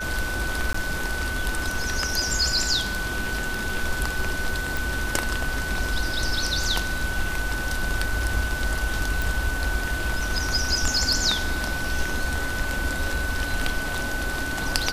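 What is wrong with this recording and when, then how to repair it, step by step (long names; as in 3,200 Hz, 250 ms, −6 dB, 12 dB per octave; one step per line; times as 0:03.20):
whistle 1,500 Hz −29 dBFS
0:00.73–0:00.74: drop-out 14 ms
0:04.77: click
0:09.22: click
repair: click removal
notch filter 1,500 Hz, Q 30
repair the gap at 0:00.73, 14 ms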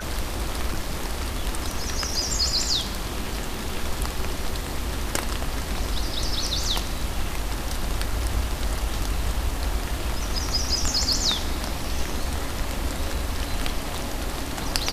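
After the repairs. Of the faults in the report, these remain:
none of them is left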